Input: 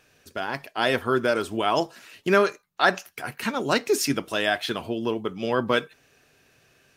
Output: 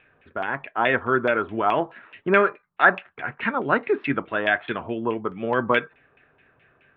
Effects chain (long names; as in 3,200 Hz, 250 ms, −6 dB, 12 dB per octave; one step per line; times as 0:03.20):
Chebyshev low-pass filter 3,700 Hz, order 5
auto-filter low-pass saw down 4.7 Hz 970–2,500 Hz